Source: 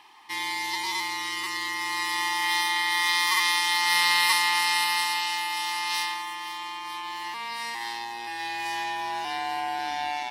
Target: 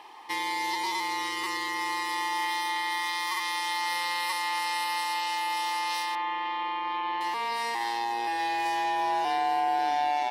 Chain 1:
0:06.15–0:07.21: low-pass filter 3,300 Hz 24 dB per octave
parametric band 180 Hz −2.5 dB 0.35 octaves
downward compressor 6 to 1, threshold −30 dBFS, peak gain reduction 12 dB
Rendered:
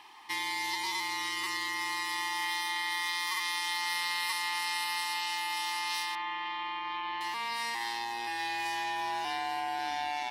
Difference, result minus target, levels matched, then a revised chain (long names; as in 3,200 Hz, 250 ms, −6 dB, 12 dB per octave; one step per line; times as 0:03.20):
500 Hz band −6.5 dB
0:06.15–0:07.21: low-pass filter 3,300 Hz 24 dB per octave
parametric band 180 Hz −2.5 dB 0.35 octaves
downward compressor 6 to 1, threshold −30 dBFS, peak gain reduction 12 dB
parametric band 530 Hz +14 dB 1.4 octaves